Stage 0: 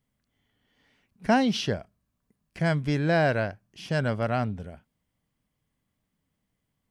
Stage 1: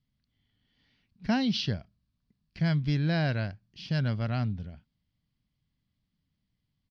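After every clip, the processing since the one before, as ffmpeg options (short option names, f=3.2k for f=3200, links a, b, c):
-af "firequalizer=gain_entry='entry(130,0);entry(450,-13);entry(4500,2);entry(8100,-26)':delay=0.05:min_phase=1,volume=1.5dB"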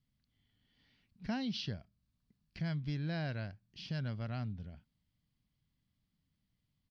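-af "acompressor=threshold=-47dB:ratio=1.5,volume=-2dB"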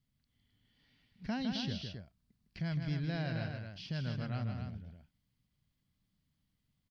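-af "aecho=1:1:157.4|265.3:0.501|0.447"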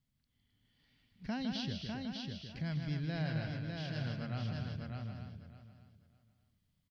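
-af "aecho=1:1:601|1202|1803:0.631|0.12|0.0228,volume=-1.5dB"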